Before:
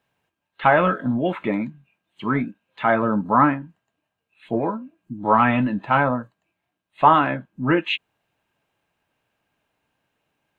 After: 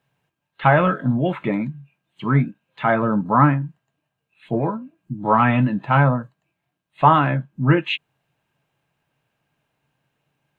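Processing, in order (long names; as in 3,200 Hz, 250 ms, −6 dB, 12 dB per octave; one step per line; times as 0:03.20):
parametric band 140 Hz +12.5 dB 0.42 octaves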